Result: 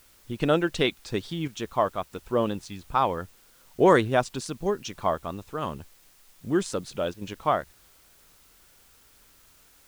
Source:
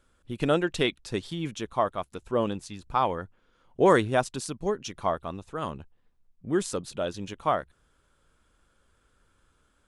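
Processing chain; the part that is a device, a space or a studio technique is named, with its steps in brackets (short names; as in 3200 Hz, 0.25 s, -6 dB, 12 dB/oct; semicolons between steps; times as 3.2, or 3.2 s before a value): worn cassette (LPF 7800 Hz; wow and flutter; level dips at 1.48/7.14, 72 ms -9 dB; white noise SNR 30 dB); gain +1.5 dB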